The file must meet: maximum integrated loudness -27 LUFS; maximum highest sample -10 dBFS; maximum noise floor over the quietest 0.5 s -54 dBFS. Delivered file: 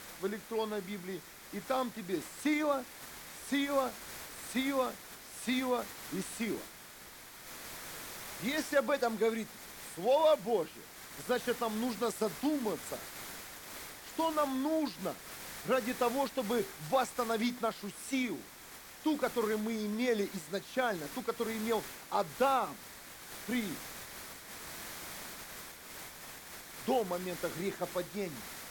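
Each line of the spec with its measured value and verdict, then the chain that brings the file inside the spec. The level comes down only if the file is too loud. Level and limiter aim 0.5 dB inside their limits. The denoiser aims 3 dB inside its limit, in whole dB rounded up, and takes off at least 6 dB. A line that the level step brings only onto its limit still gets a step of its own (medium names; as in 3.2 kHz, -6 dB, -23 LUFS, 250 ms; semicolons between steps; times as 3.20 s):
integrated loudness -35.5 LUFS: pass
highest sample -18.0 dBFS: pass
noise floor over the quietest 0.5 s -52 dBFS: fail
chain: noise reduction 6 dB, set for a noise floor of -52 dBFS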